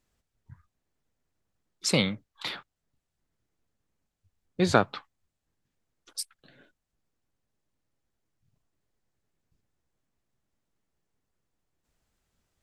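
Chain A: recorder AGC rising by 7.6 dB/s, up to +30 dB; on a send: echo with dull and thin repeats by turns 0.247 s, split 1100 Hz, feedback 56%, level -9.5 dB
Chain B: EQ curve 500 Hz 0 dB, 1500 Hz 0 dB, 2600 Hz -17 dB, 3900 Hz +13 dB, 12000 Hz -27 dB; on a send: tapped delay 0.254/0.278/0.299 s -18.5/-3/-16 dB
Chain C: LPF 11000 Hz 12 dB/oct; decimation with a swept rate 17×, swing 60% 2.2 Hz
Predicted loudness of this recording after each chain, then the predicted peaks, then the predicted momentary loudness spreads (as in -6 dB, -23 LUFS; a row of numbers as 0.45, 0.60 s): -27.5, -25.5, -29.0 LUFS; -3.0, -4.5, -5.5 dBFS; 24, 17, 20 LU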